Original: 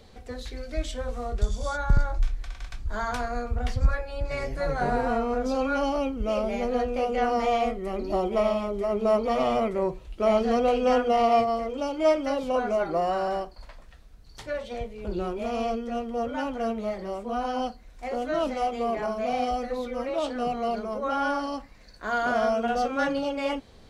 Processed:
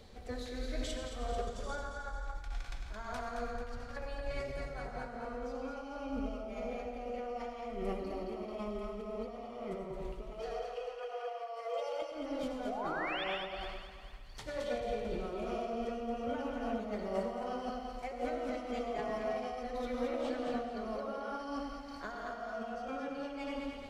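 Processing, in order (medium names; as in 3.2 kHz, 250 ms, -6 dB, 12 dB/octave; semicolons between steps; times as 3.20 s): 10.30–12.02 s: steep high-pass 460 Hz 48 dB/octave; compressor with a negative ratio -33 dBFS, ratio -1; 12.65–13.24 s: painted sound rise 580–3700 Hz -31 dBFS; on a send: two-band feedback delay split 940 Hz, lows 99 ms, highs 220 ms, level -4.5 dB; on the sum: algorithmic reverb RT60 1.4 s, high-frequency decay 0.65×, pre-delay 50 ms, DRR 2.5 dB; random flutter of the level, depth 60%; trim -7.5 dB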